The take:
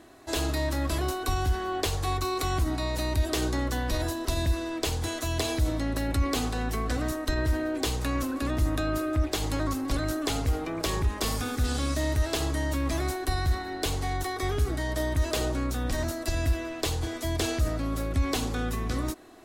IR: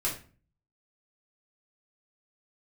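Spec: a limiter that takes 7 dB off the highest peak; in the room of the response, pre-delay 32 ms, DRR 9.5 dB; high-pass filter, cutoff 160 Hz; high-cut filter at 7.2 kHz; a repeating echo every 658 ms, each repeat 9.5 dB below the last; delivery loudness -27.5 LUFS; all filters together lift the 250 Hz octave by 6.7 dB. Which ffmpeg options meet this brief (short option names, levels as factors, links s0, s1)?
-filter_complex "[0:a]highpass=160,lowpass=7200,equalizer=f=250:t=o:g=9,alimiter=limit=0.106:level=0:latency=1,aecho=1:1:658|1316|1974|2632:0.335|0.111|0.0365|0.012,asplit=2[s0][s1];[1:a]atrim=start_sample=2205,adelay=32[s2];[s1][s2]afir=irnorm=-1:irlink=0,volume=0.168[s3];[s0][s3]amix=inputs=2:normalize=0,volume=0.944"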